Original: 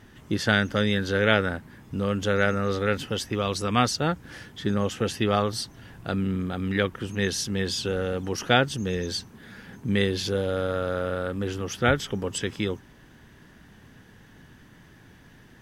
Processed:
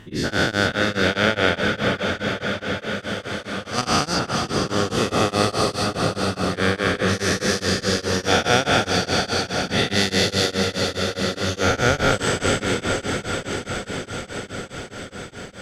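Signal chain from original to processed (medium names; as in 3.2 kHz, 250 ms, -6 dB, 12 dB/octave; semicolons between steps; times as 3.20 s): every event in the spectrogram widened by 480 ms; treble shelf 11 kHz -7.5 dB; 1.98–3.83 s: level held to a coarse grid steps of 16 dB; 9.63–10.54 s: treble shelf 4 kHz +9 dB; on a send: echo that smears into a reverb 489 ms, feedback 75%, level -5 dB; on the sum: tremolo of two beating tones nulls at 4.8 Hz; trim -1.5 dB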